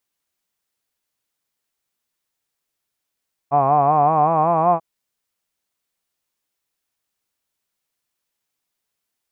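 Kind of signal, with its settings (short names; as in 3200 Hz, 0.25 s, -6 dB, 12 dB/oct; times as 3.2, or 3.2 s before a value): formant-synthesis vowel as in hod, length 1.29 s, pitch 137 Hz, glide +4 st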